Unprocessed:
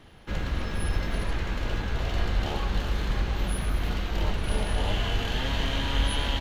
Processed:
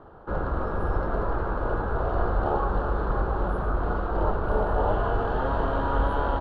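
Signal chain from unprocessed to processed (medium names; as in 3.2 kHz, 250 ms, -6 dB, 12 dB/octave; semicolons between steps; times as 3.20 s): FFT filter 240 Hz 0 dB, 400 Hz +9 dB, 1.4 kHz +9 dB, 2.1 kHz -19 dB, 4.3 kHz -17 dB, 6.1 kHz -26 dB, 9.2 kHz -28 dB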